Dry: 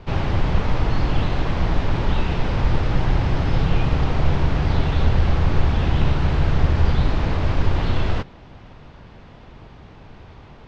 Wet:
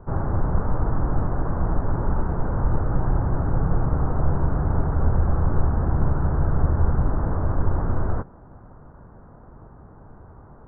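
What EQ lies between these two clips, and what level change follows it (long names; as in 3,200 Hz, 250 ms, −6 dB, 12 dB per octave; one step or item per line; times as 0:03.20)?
Butterworth low-pass 1,500 Hz 48 dB per octave
−2.5 dB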